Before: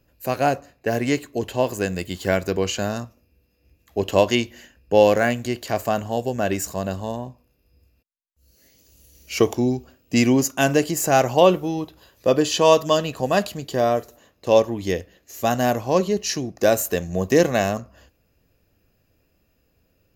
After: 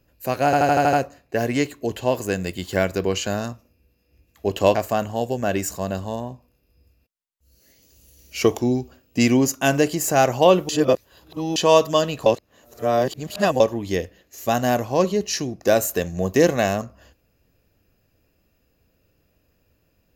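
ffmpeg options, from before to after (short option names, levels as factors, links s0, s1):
-filter_complex "[0:a]asplit=12[s0][s1][s2][s3][s4][s5][s6][s7][s8][s9][s10][s11];[s0]atrim=end=0.532[s12];[s1]atrim=start=0.448:end=0.532[s13];[s2]atrim=start=0.448:end=0.532[s14];[s3]atrim=start=0.448:end=0.532[s15];[s4]atrim=start=0.448:end=0.532[s16];[s5]atrim=start=0.448:end=0.532[s17];[s6]atrim=start=0.448:end=4.272[s18];[s7]atrim=start=5.708:end=11.652[s19];[s8]atrim=start=11.648:end=12.522,asetpts=PTS-STARTPTS,areverse[s20];[s9]atrim=start=12.518:end=13.222[s21];[s10]atrim=start=13.218:end=14.562,asetpts=PTS-STARTPTS,areverse[s22];[s11]atrim=start=14.558[s23];[s12][s13]acrossfade=d=0.004:c1=hsin:c2=hsin[s24];[s24][s14]acrossfade=d=0.004:c1=hsin:c2=hsin[s25];[s25][s15]acrossfade=d=0.004:c1=hsin:c2=hsin[s26];[s26][s16]acrossfade=d=0.004:c1=hsin:c2=hsin[s27];[s27][s17]acrossfade=d=0.004:c1=hsin:c2=hsin[s28];[s28][s18]acrossfade=d=0.004:c1=hsin:c2=hsin[s29];[s29][s19]acrossfade=d=0.004:c1=hsin:c2=hsin[s30];[s30][s20]acrossfade=d=0.004:c1=hsin:c2=hsin[s31];[s31][s21]acrossfade=d=0.004:c1=hsin:c2=hsin[s32];[s32][s22]acrossfade=d=0.004:c1=hsin:c2=hsin[s33];[s33][s23]acrossfade=d=0.004:c1=hsin:c2=hsin"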